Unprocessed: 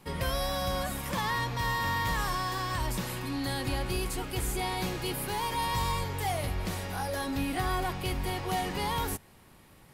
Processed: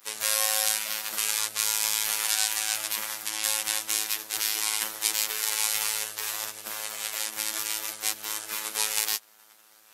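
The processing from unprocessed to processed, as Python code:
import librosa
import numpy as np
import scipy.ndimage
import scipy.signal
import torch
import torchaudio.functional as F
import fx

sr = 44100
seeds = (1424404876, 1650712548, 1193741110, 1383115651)

y = fx.weighting(x, sr, curve='ITU-R 468')
y = fx.robotise(y, sr, hz=108.0)
y = fx.riaa(y, sr, side='recording')
y = fx.spec_gate(y, sr, threshold_db=-15, keep='weak')
y = y * 10.0 ** (4.5 / 20.0)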